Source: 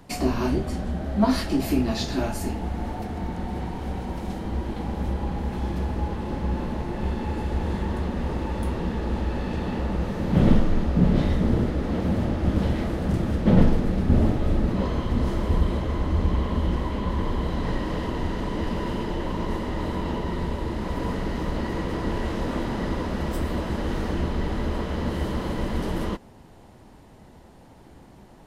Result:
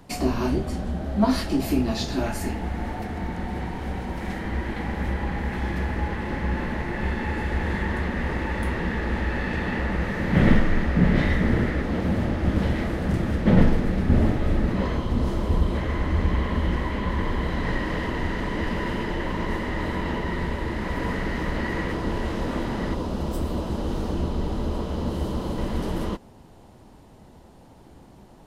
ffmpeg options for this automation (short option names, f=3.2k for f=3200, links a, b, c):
-af "asetnsamples=n=441:p=0,asendcmd='2.26 equalizer g 7.5;4.21 equalizer g 14;11.82 equalizer g 6.5;14.97 equalizer g -1;15.75 equalizer g 9;21.93 equalizer g 1.5;22.94 equalizer g -10;25.58 equalizer g -3.5',equalizer=f=1.9k:t=o:w=0.78:g=-0.5"